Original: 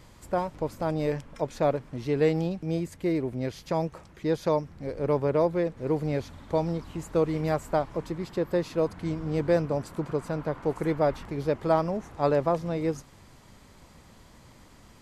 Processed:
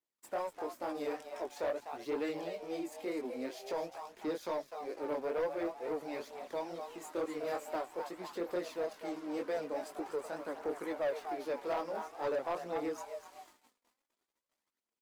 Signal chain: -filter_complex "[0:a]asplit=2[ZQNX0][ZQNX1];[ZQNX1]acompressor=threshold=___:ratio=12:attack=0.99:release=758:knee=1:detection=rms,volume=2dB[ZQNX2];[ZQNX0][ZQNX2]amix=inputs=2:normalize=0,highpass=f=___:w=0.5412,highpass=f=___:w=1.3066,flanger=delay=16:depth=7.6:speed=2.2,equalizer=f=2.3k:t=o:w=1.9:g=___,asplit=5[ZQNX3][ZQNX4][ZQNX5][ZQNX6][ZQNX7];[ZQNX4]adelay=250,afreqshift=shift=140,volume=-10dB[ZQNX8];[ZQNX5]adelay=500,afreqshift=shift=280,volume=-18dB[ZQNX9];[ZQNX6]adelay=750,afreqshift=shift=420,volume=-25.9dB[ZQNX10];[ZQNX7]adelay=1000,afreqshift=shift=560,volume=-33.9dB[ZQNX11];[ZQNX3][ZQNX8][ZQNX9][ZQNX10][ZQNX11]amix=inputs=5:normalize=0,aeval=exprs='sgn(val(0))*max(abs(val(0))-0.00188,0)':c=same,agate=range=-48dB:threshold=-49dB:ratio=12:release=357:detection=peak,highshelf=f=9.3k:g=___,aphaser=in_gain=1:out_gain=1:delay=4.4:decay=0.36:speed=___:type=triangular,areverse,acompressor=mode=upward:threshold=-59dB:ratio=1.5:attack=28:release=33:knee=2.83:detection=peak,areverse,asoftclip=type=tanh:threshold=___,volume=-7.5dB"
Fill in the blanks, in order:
-31dB, 280, 280, 2, 7.5, 0.47, -21dB